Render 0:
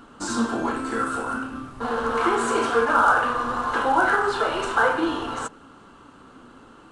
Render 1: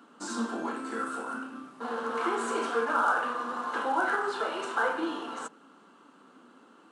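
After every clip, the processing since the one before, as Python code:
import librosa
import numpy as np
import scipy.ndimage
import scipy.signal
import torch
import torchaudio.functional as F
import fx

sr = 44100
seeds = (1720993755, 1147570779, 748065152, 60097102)

y = scipy.signal.sosfilt(scipy.signal.butter(6, 180.0, 'highpass', fs=sr, output='sos'), x)
y = y * 10.0 ** (-8.0 / 20.0)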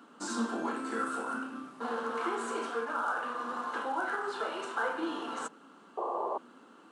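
y = fx.rider(x, sr, range_db=4, speed_s=0.5)
y = fx.spec_paint(y, sr, seeds[0], shape='noise', start_s=5.97, length_s=0.41, low_hz=330.0, high_hz=1200.0, level_db=-30.0)
y = y * 10.0 ** (-3.5 / 20.0)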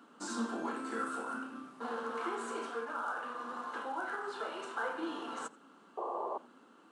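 y = fx.rider(x, sr, range_db=10, speed_s=2.0)
y = y + 10.0 ** (-23.0 / 20.0) * np.pad(y, (int(85 * sr / 1000.0), 0))[:len(y)]
y = y * 10.0 ** (-4.5 / 20.0)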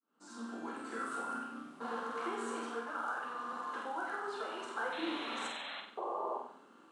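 y = fx.fade_in_head(x, sr, length_s=1.14)
y = fx.spec_paint(y, sr, seeds[1], shape='noise', start_s=4.92, length_s=0.89, low_hz=500.0, high_hz=4200.0, level_db=-44.0)
y = fx.room_flutter(y, sr, wall_m=8.1, rt60_s=0.56)
y = y * 10.0 ** (-1.5 / 20.0)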